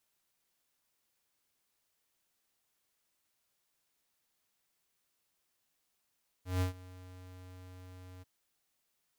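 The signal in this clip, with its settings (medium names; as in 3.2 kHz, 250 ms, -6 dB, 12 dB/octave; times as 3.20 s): ADSR square 91.7 Hz, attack 161 ms, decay 117 ms, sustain -21.5 dB, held 1.77 s, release 22 ms -29.5 dBFS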